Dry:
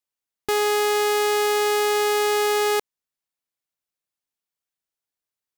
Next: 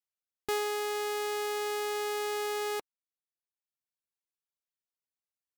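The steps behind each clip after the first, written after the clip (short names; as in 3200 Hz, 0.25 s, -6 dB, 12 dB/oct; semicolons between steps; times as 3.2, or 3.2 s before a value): reverb removal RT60 0.95 s; gain -8.5 dB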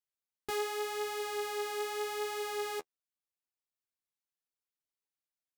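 flange 0.83 Hz, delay 7.4 ms, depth 7 ms, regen +17%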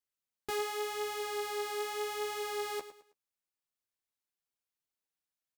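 feedback echo 0.107 s, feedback 32%, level -13 dB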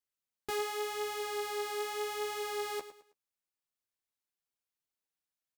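nothing audible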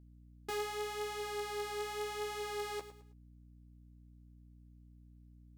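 tracing distortion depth 0.026 ms; hum 60 Hz, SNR 15 dB; gain -3 dB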